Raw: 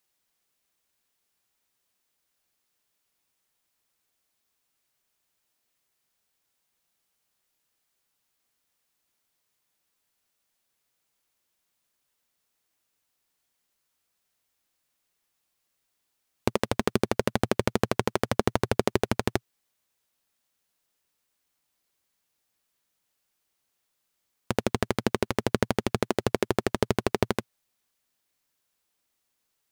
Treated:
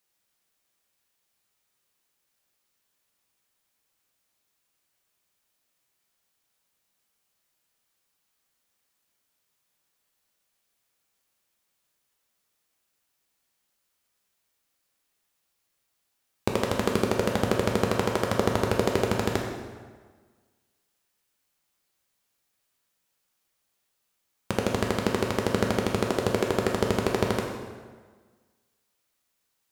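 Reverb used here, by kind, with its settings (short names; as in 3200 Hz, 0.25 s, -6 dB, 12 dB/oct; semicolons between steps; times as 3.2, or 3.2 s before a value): plate-style reverb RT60 1.5 s, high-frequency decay 0.75×, pre-delay 0 ms, DRR 0.5 dB; gain -1 dB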